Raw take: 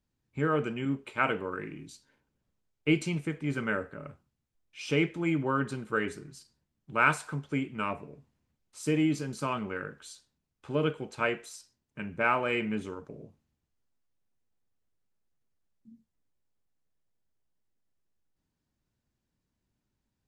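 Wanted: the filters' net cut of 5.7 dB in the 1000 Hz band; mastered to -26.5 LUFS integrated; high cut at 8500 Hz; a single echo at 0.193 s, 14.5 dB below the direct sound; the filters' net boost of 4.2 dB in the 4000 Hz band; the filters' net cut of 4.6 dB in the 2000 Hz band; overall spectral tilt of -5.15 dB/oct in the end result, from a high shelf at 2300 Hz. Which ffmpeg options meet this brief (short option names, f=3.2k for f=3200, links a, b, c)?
-af "lowpass=8.5k,equalizer=f=1k:t=o:g=-6,equalizer=f=2k:t=o:g=-8.5,highshelf=f=2.3k:g=4,equalizer=f=4k:t=o:g=8,aecho=1:1:193:0.188,volume=6.5dB"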